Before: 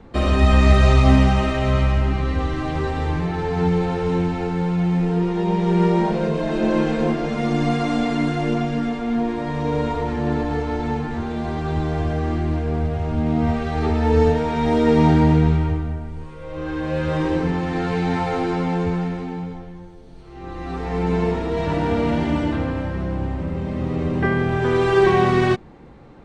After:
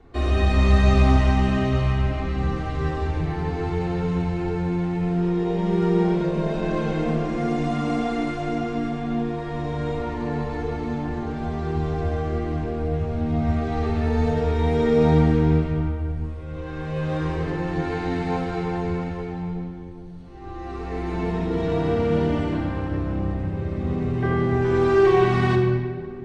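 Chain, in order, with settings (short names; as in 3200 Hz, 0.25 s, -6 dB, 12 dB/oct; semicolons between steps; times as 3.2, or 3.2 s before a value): shoebox room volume 3900 m³, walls mixed, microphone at 3.4 m; gain -8.5 dB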